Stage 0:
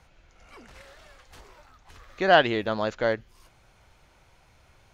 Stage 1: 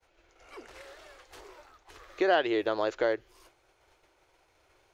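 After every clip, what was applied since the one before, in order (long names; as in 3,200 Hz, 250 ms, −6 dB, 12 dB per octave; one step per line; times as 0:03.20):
downward expander −52 dBFS
low shelf with overshoot 270 Hz −8.5 dB, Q 3
downward compressor 2.5 to 1, threshold −25 dBFS, peak gain reduction 10 dB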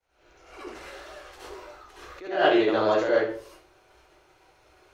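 in parallel at −10 dB: soft clipping −22 dBFS, distortion −13 dB
on the sum: convolution reverb RT60 0.45 s, pre-delay 63 ms, DRR −9.5 dB
level that may rise only so fast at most 100 dB per second
level −5 dB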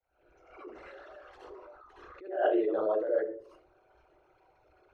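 spectral envelope exaggerated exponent 2
level −6.5 dB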